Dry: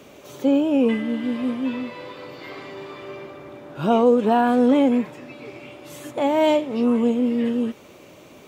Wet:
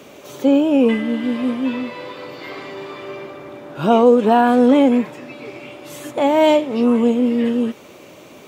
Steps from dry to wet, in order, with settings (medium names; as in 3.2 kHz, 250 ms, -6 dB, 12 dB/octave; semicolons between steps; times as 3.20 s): bass shelf 90 Hz -9 dB; trim +5 dB